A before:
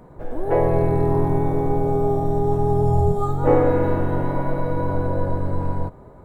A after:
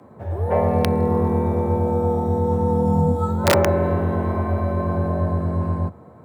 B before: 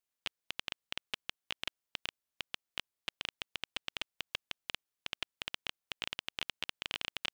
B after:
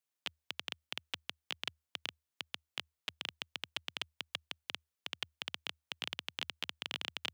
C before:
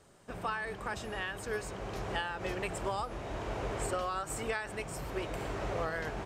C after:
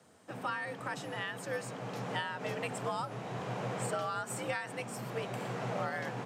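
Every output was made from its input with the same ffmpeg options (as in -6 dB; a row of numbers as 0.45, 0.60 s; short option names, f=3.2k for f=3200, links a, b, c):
-af "aeval=exprs='(mod(2.24*val(0)+1,2)-1)/2.24':c=same,afreqshift=76,volume=-1dB"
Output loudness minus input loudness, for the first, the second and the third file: +0.5, -1.0, -0.5 LU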